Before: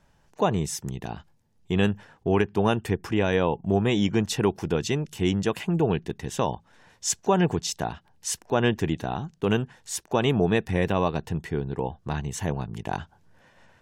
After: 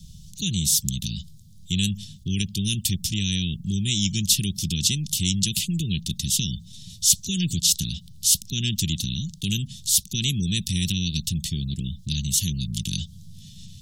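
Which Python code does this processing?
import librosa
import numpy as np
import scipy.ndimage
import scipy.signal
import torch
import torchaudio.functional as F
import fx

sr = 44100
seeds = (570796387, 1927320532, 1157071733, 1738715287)

y = scipy.signal.sosfilt(scipy.signal.cheby1(4, 1.0, [190.0, 3500.0], 'bandstop', fs=sr, output='sos'), x)
y = fx.spectral_comp(y, sr, ratio=2.0)
y = y * librosa.db_to_amplitude(8.5)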